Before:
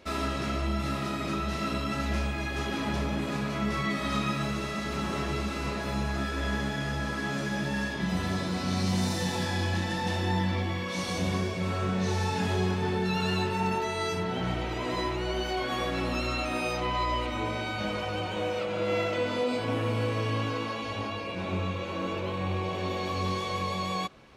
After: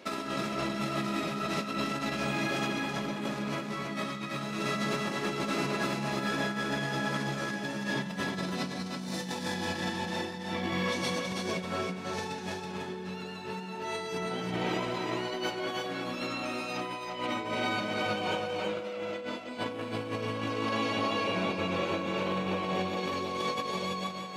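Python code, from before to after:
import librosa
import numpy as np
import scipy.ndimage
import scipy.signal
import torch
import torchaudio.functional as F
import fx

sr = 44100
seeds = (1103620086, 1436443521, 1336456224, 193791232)

p1 = scipy.signal.sosfilt(scipy.signal.butter(4, 140.0, 'highpass', fs=sr, output='sos'), x)
p2 = fx.over_compress(p1, sr, threshold_db=-34.0, ratio=-0.5)
y = p2 + fx.echo_single(p2, sr, ms=326, db=-4.0, dry=0)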